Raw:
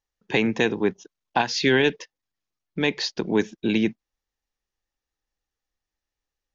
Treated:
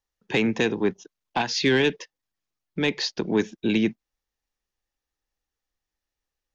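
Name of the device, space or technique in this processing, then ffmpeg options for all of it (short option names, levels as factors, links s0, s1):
one-band saturation: -filter_complex "[0:a]acrossover=split=350|2500[s0][s1][s2];[s1]asoftclip=type=tanh:threshold=0.112[s3];[s0][s3][s2]amix=inputs=3:normalize=0"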